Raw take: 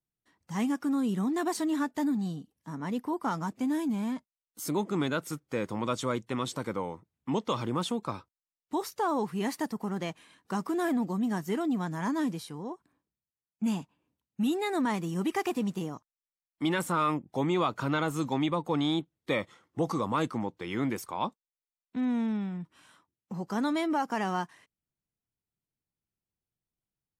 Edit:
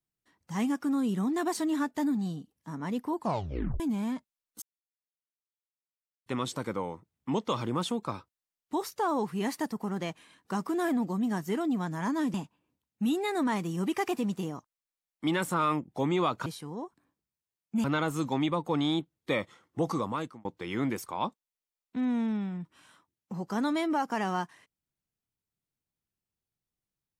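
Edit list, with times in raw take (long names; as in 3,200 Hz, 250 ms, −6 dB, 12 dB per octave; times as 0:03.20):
0:03.15: tape stop 0.65 s
0:04.62–0:06.26: silence
0:12.34–0:13.72: move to 0:17.84
0:19.97–0:20.45: fade out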